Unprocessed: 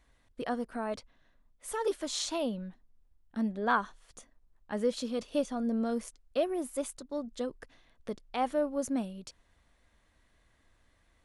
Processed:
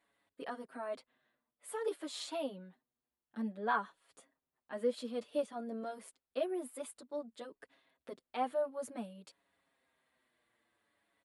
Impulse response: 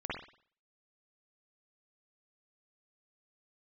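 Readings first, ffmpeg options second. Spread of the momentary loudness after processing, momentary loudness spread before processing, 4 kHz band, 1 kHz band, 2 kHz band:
16 LU, 12 LU, -8.0 dB, -5.0 dB, -5.5 dB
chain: -filter_complex "[0:a]highpass=250,equalizer=f=6000:t=o:w=0.5:g=-11.5,asplit=2[s0][s1];[s1]adelay=6.6,afreqshift=-0.55[s2];[s0][s2]amix=inputs=2:normalize=1,volume=0.75"

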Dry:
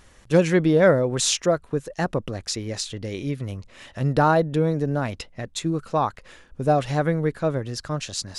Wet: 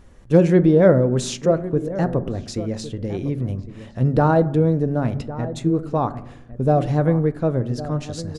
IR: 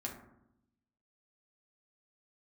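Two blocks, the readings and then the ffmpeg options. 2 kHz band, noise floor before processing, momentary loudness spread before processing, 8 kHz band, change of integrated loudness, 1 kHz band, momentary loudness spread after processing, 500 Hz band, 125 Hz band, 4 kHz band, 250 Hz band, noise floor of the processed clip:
-4.5 dB, -53 dBFS, 12 LU, -7.5 dB, +3.0 dB, -0.5 dB, 13 LU, +3.0 dB, +5.5 dB, -7.0 dB, +5.0 dB, -42 dBFS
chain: -filter_complex "[0:a]tiltshelf=f=860:g=7,asplit=2[s0][s1];[s1]adelay=1108,volume=0.2,highshelf=f=4000:g=-24.9[s2];[s0][s2]amix=inputs=2:normalize=0,asplit=2[s3][s4];[1:a]atrim=start_sample=2205[s5];[s4][s5]afir=irnorm=-1:irlink=0,volume=0.447[s6];[s3][s6]amix=inputs=2:normalize=0,volume=0.708"

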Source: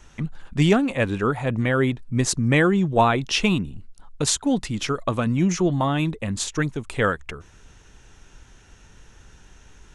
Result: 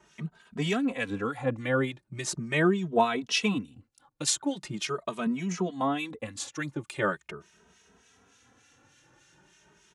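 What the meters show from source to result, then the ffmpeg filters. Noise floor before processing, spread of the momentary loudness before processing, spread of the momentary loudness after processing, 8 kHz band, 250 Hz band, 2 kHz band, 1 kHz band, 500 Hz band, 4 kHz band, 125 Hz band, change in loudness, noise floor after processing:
-51 dBFS, 8 LU, 12 LU, -6.0 dB, -8.0 dB, -6.0 dB, -6.5 dB, -6.5 dB, -5.5 dB, -12.0 dB, -7.5 dB, -69 dBFS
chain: -filter_complex "[0:a]highpass=170,acrossover=split=1700[s0][s1];[s0]aeval=exprs='val(0)*(1-0.7/2+0.7/2*cos(2*PI*3.4*n/s))':c=same[s2];[s1]aeval=exprs='val(0)*(1-0.7/2-0.7/2*cos(2*PI*3.4*n/s))':c=same[s3];[s2][s3]amix=inputs=2:normalize=0,asplit=2[s4][s5];[s5]adelay=2.8,afreqshift=0.41[s6];[s4][s6]amix=inputs=2:normalize=1"

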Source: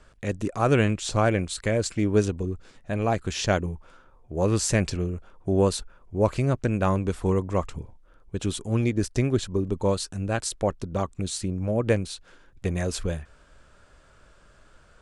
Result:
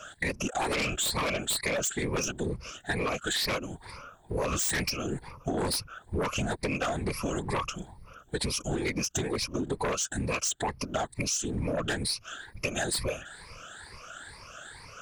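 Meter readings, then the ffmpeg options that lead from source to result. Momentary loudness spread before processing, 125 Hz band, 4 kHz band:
11 LU, -10.0 dB, +3.5 dB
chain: -af "afftfilt=real='re*pow(10,21/40*sin(2*PI*(0.88*log(max(b,1)*sr/1024/100)/log(2)-(2.2)*(pts-256)/sr)))':imag='im*pow(10,21/40*sin(2*PI*(0.88*log(max(b,1)*sr/1024/100)/log(2)-(2.2)*(pts-256)/sr)))':win_size=1024:overlap=0.75,afftfilt=real='hypot(re,im)*cos(2*PI*random(0))':imag='hypot(re,im)*sin(2*PI*random(1))':win_size=512:overlap=0.75,tiltshelf=f=770:g=-7.5,aeval=exprs='0.376*sin(PI/2*4.47*val(0)/0.376)':c=same,acompressor=threshold=0.0891:ratio=10,volume=0.473"

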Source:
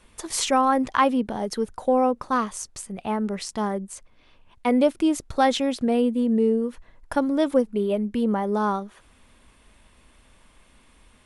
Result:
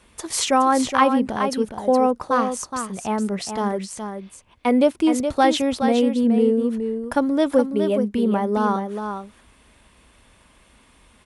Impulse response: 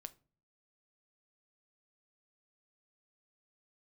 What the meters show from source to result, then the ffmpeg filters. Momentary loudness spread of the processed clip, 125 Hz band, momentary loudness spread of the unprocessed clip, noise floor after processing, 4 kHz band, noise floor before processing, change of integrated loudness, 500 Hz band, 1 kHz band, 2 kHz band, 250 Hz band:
11 LU, no reading, 10 LU, -55 dBFS, +3.0 dB, -57 dBFS, +3.0 dB, +3.0 dB, +3.0 dB, +3.0 dB, +3.0 dB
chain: -filter_complex "[0:a]highpass=41,asplit=2[s0][s1];[s1]aecho=0:1:419:0.422[s2];[s0][s2]amix=inputs=2:normalize=0,volume=1.33"

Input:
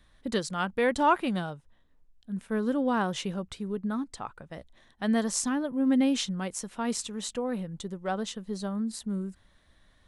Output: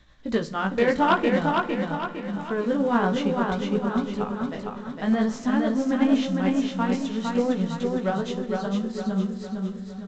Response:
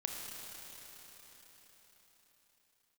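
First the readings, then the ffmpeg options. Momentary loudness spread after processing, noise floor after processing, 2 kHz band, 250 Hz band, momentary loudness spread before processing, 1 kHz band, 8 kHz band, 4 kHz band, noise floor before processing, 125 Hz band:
9 LU, -38 dBFS, +5.5 dB, +6.0 dB, 14 LU, +5.0 dB, no reading, +1.0 dB, -64 dBFS, +7.0 dB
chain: -filter_complex "[0:a]acrossover=split=2800[s0][s1];[s1]acompressor=threshold=0.00355:ratio=4:attack=1:release=60[s2];[s0][s2]amix=inputs=2:normalize=0,flanger=delay=16:depth=5.5:speed=0.53,aeval=exprs='0.237*sin(PI/2*2*val(0)/0.237)':c=same,tremolo=f=8.8:d=0.46,aecho=1:1:458|916|1374|1832|2290|2748:0.668|0.307|0.141|0.0651|0.0299|0.0138,asplit=2[s3][s4];[1:a]atrim=start_sample=2205,lowshelf=f=330:g=6.5,adelay=54[s5];[s4][s5]afir=irnorm=-1:irlink=0,volume=0.168[s6];[s3][s6]amix=inputs=2:normalize=0" -ar 16000 -c:a pcm_mulaw

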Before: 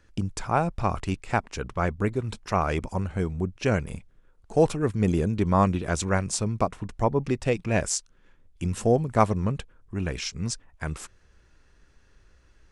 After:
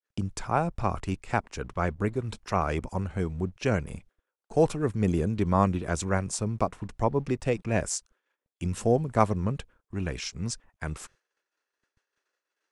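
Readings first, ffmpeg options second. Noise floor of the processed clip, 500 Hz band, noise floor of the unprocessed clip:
under -85 dBFS, -2.0 dB, -60 dBFS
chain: -filter_complex "[0:a]agate=range=0.0224:threshold=0.00501:ratio=3:detection=peak,adynamicequalizer=threshold=0.00631:dfrequency=3600:dqfactor=0.81:tfrequency=3600:tqfactor=0.81:attack=5:release=100:ratio=0.375:range=3:mode=cutabove:tftype=bell,acrossover=split=380[s0][s1];[s0]aeval=exprs='sgn(val(0))*max(abs(val(0))-0.0015,0)':c=same[s2];[s2][s1]amix=inputs=2:normalize=0,volume=0.794"

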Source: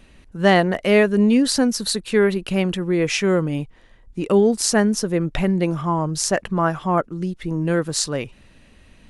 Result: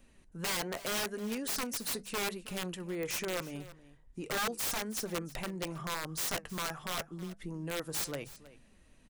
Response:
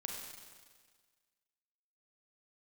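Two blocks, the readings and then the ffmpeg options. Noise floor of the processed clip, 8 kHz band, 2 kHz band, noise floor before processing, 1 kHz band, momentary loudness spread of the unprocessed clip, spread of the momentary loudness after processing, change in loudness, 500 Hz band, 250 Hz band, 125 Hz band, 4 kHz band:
-62 dBFS, -11.0 dB, -13.0 dB, -51 dBFS, -15.5 dB, 11 LU, 9 LU, -16.0 dB, -20.0 dB, -21.5 dB, -20.0 dB, -11.0 dB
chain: -filter_complex "[0:a]flanger=delay=3.6:depth=5:regen=72:speed=0.82:shape=triangular,acrossover=split=490|5300[s0][s1][s2];[s0]acompressor=threshold=0.0282:ratio=6[s3];[s1]lowpass=f=2300:p=1[s4];[s2]acontrast=52[s5];[s3][s4][s5]amix=inputs=3:normalize=0,bandreject=f=50:t=h:w=6,bandreject=f=100:t=h:w=6,bandreject=f=150:t=h:w=6,bandreject=f=200:t=h:w=6,aeval=exprs='(mod(11.2*val(0)+1,2)-1)/11.2':c=same,aecho=1:1:320:0.133,volume=0.422"

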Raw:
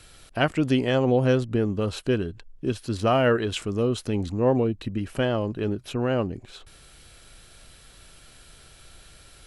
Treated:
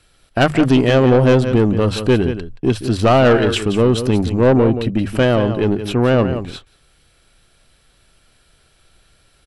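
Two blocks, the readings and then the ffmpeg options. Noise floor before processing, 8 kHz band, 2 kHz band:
-52 dBFS, +7.5 dB, +9.0 dB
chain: -af "bandreject=f=50:t=h:w=6,bandreject=f=100:t=h:w=6,bandreject=f=150:t=h:w=6,acontrast=90,highshelf=f=4900:g=-4,bandreject=f=6700:w=13,aecho=1:1:176:0.282,acontrast=88,aeval=exprs='1*(cos(1*acos(clip(val(0)/1,-1,1)))-cos(1*PI/2))+0.0631*(cos(4*acos(clip(val(0)/1,-1,1)))-cos(4*PI/2))':c=same,agate=range=0.158:threshold=0.0355:ratio=16:detection=peak,volume=0.708"

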